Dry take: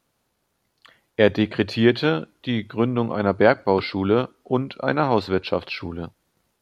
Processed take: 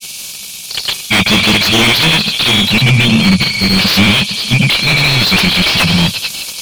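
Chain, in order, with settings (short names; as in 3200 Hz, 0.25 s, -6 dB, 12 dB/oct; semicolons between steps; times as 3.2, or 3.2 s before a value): on a send: thin delay 0.24 s, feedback 49%, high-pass 3800 Hz, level -23.5 dB; on the sum: grains 0.1 s, grains 20/s, pitch spread up and down by 0 st; tone controls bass -12 dB, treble +15 dB; in parallel at +2 dB: compressor, threshold -33 dBFS, peak gain reduction 19 dB; on the sum: brick-wall FIR band-stop 220–2200 Hz; sine folder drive 14 dB, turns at -9.5 dBFS; overdrive pedal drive 34 dB, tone 1400 Hz, clips at 0 dBFS; gain +2.5 dB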